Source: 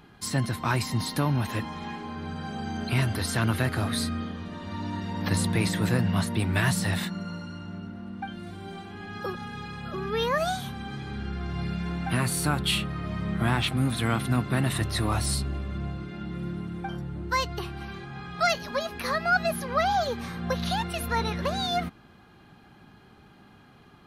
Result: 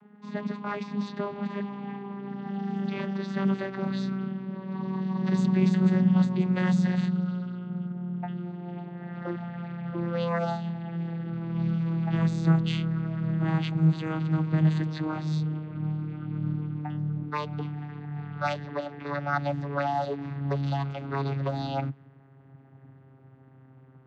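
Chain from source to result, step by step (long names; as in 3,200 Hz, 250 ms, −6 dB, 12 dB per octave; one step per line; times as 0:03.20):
vocoder with a gliding carrier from G#3, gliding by −8 semitones
low-pass that shuts in the quiet parts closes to 1,800 Hz, open at −21.5 dBFS
level +1.5 dB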